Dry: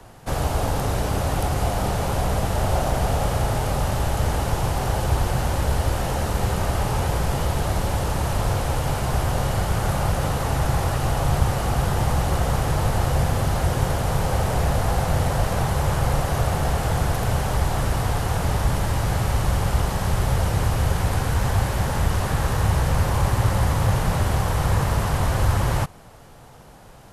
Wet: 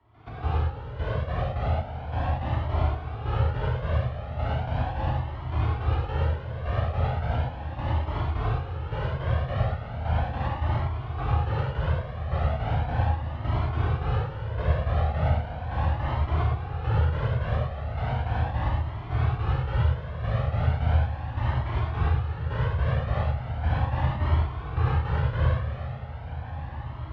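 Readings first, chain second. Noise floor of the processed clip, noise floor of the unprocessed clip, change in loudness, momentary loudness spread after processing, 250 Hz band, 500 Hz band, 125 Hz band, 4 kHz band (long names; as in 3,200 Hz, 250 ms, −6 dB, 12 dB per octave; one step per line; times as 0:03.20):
−37 dBFS, −45 dBFS, −5.0 dB, 6 LU, −8.0 dB, −7.5 dB, −3.5 dB, −11.5 dB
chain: inverse Chebyshev low-pass filter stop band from 9,500 Hz, stop band 60 dB
gate pattern ".x.x...x" 106 BPM −12 dB
high-pass filter 50 Hz
feedback delay with all-pass diffusion 1,595 ms, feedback 61%, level −11.5 dB
reverb whose tail is shaped and stops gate 150 ms flat, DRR −5 dB
flanger whose copies keep moving one way rising 0.37 Hz
level −5.5 dB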